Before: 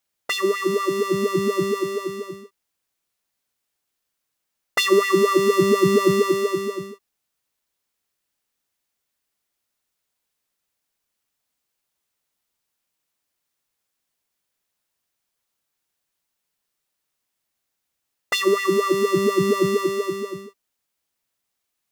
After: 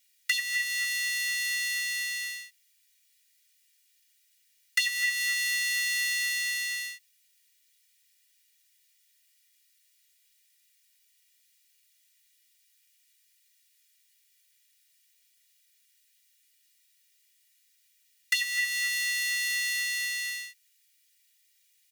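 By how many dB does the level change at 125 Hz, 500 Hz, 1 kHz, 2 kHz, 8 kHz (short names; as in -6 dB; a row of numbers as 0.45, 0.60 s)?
under -40 dB, under -40 dB, under -30 dB, +2.0 dB, +2.0 dB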